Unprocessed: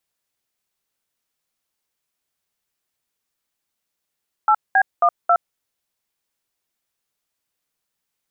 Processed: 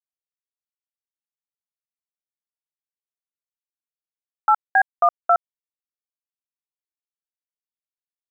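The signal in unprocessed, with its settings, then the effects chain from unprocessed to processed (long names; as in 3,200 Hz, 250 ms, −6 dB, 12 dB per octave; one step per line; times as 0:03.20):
touch tones "8B12", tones 67 ms, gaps 204 ms, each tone −14 dBFS
bit reduction 9 bits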